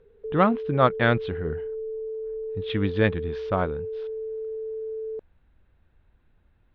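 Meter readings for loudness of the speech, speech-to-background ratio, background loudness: -25.0 LUFS, 8.5 dB, -33.5 LUFS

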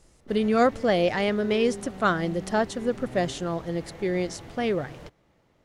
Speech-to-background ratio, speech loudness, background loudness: 15.0 dB, -26.0 LUFS, -41.0 LUFS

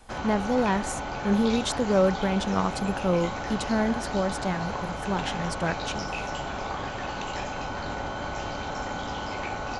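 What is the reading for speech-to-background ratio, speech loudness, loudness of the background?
5.0 dB, -27.5 LUFS, -32.5 LUFS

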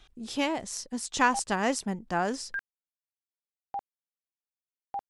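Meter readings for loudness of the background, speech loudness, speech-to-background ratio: -40.0 LUFS, -29.5 LUFS, 10.5 dB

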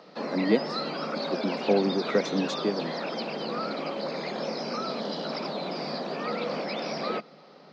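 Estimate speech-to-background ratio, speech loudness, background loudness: 3.0 dB, -29.0 LUFS, -32.0 LUFS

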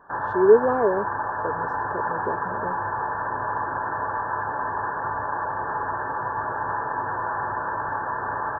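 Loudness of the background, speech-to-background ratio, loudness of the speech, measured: -27.5 LUFS, 6.0 dB, -21.5 LUFS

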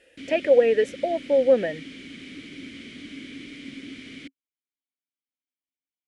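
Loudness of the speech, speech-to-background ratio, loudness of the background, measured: -21.5 LUFS, 18.5 dB, -40.0 LUFS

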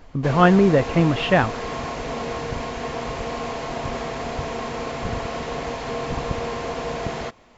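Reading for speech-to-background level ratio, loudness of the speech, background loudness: 10.5 dB, -18.5 LUFS, -29.0 LUFS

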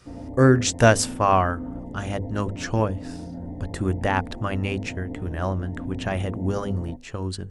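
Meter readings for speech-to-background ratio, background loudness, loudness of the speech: 12.0 dB, -36.5 LUFS, -24.5 LUFS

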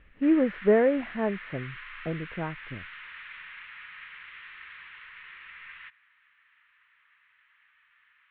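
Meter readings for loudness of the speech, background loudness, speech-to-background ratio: -26.5 LUFS, -43.0 LUFS, 16.5 dB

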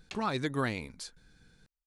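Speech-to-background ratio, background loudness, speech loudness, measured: 15.5 dB, -49.5 LUFS, -34.0 LUFS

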